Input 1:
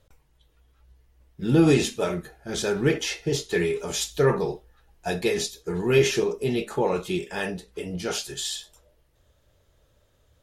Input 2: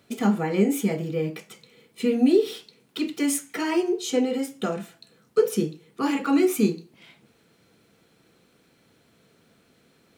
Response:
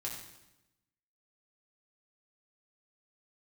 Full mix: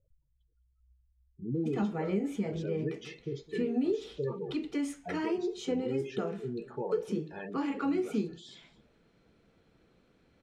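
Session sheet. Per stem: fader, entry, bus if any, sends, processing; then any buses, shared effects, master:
-10.0 dB, 0.00 s, no send, echo send -18.5 dB, spectral gate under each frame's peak -15 dB strong
-4.0 dB, 1.55 s, no send, no echo send, treble shelf 5.3 kHz +8.5 dB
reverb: none
echo: delay 210 ms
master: tape spacing loss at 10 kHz 25 dB; compression 2:1, threshold -31 dBFS, peak gain reduction 7.5 dB

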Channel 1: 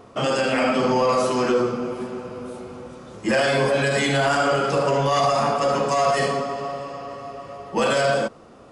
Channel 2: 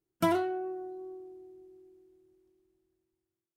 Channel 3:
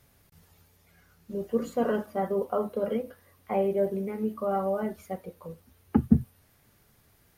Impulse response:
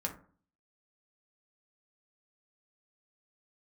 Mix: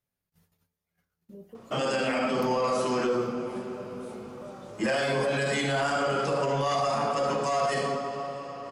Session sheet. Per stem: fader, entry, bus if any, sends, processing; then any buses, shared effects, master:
-5.0 dB, 1.55 s, no send, none
-10.0 dB, 2.20 s, no send, compression, threshold -37 dBFS, peak gain reduction 14.5 dB; tilt shelf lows -9.5 dB
-10.5 dB, 0.00 s, send -8.5 dB, gate -58 dBFS, range -16 dB; compression 4:1, threshold -37 dBFS, peak gain reduction 20 dB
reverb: on, RT60 0.45 s, pre-delay 3 ms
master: peaking EQ 69 Hz -14 dB 0.35 oct; peak limiter -19 dBFS, peak gain reduction 3.5 dB

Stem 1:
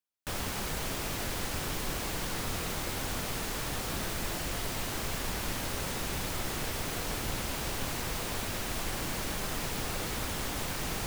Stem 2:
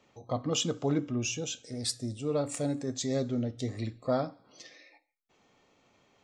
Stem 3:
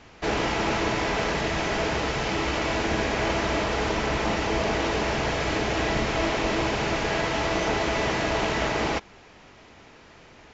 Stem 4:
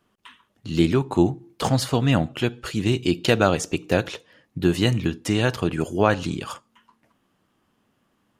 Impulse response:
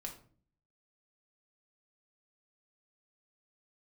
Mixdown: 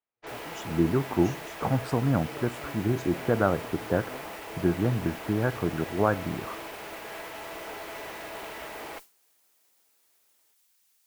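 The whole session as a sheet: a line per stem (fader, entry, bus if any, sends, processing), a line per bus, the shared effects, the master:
-13.0 dB, 0.00 s, no send, differentiator
-15.0 dB, 0.00 s, no send, none
-9.0 dB, 0.00 s, no send, tone controls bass -15 dB, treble -7 dB; valve stage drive 24 dB, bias 0.5
-5.0 dB, 0.00 s, no send, steep low-pass 1.7 kHz 72 dB/octave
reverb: none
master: expander -39 dBFS

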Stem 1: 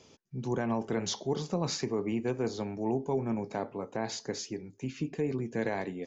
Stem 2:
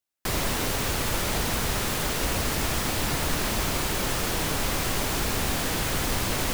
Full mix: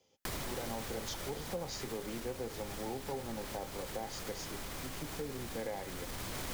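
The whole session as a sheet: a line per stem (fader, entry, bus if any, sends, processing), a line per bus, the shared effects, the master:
-6.5 dB, 0.00 s, no send, small resonant body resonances 530/790/2000/3100 Hz, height 12 dB; three bands expanded up and down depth 40%
-2.0 dB, 0.00 s, no send, band-stop 2.7 kHz, Q 25; peak limiter -19.5 dBFS, peak gain reduction 6 dB; auto duck -10 dB, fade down 1.65 s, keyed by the first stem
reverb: none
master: compression 3:1, threshold -38 dBFS, peak gain reduction 9.5 dB

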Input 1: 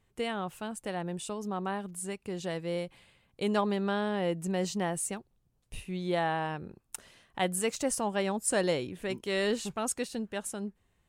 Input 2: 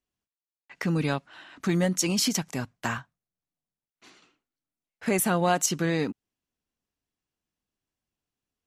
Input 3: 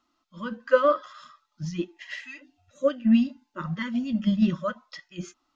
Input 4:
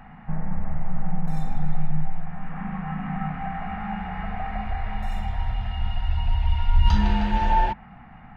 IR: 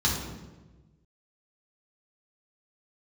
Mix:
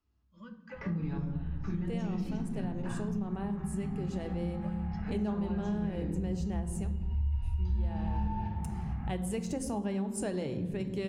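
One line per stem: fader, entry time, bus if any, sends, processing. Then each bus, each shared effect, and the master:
-4.0 dB, 1.70 s, send -18 dB, bass shelf 490 Hz +7 dB
-17.5 dB, 0.00 s, send -4.5 dB, low-pass 2.5 kHz 12 dB/octave; three bands compressed up and down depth 40%
-16.5 dB, 0.00 s, send -20.5 dB, compression, threshold -29 dBFS, peak gain reduction 15 dB
6.93 s -17 dB -> 7.32 s -4.5 dB, 0.75 s, send -7 dB, compression, threshold -26 dBFS, peak gain reduction 13.5 dB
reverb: on, RT60 1.2 s, pre-delay 3 ms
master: bass shelf 170 Hz +9.5 dB; compression 4:1, threshold -32 dBFS, peak gain reduction 21 dB

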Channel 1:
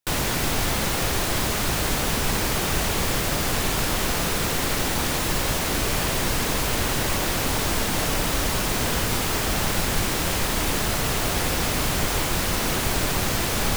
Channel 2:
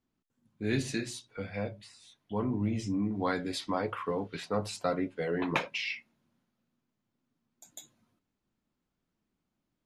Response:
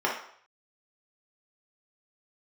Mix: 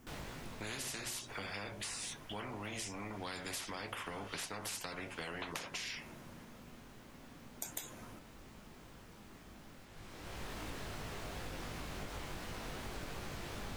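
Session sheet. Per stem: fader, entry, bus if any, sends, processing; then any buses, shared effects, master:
-15.0 dB, 0.00 s, no send, low-pass 3.6 kHz 6 dB/octave; chorus 2.8 Hz, delay 18.5 ms, depth 2.8 ms; auto duck -15 dB, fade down 1.20 s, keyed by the second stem
+2.0 dB, 0.00 s, no send, peaking EQ 4 kHz -9.5 dB 0.53 oct; compression 1.5:1, threshold -44 dBFS, peak gain reduction 7.5 dB; spectrum-flattening compressor 4:1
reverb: none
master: compression, threshold -39 dBFS, peak gain reduction 9 dB

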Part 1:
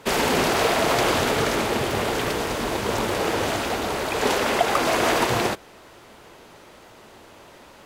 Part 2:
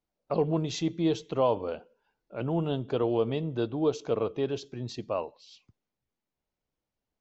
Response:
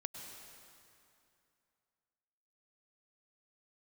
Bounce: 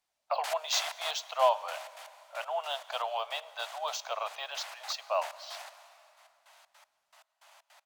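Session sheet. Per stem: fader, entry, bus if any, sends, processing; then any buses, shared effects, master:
-12.0 dB, 0.15 s, send -11.5 dB, trance gate "...x..xx.x" 157 bpm -60 dB; auto duck -15 dB, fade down 2.00 s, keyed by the second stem
+3.0 dB, 0.00 s, send -12.5 dB, none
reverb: on, RT60 2.6 s, pre-delay 93 ms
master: steep high-pass 620 Hz 72 dB/octave; treble shelf 3.6 kHz +7 dB; decimation joined by straight lines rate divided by 2×

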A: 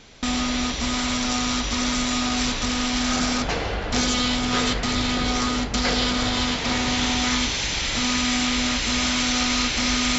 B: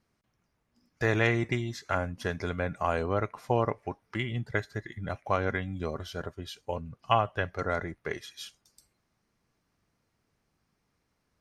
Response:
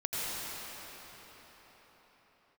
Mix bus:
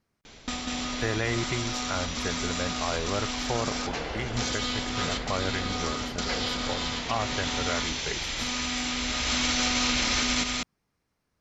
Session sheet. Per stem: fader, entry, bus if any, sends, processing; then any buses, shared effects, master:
-0.5 dB, 0.25 s, no send, echo send -6.5 dB, hum notches 50/100/150/200/250 Hz; auto duck -22 dB, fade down 0.65 s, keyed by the second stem
-1.5 dB, 0.00 s, no send, no echo send, none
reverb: none
echo: delay 194 ms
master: peak limiter -16 dBFS, peak gain reduction 6.5 dB

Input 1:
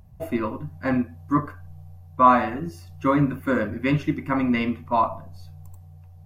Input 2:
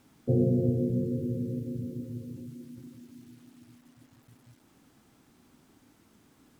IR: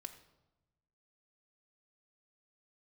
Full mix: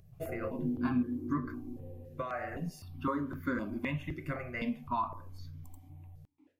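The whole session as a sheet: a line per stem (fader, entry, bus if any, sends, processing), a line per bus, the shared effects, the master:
-3.5 dB, 0.00 s, send -23.5 dB, compression 6:1, threshold -24 dBFS, peak gain reduction 13.5 dB; stepped phaser 3.9 Hz 240–2800 Hz
0.0 dB, 0.00 s, send -4 dB, gate with hold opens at -51 dBFS; stepped vowel filter 1.7 Hz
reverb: on, RT60 1.0 s, pre-delay 3 ms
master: none

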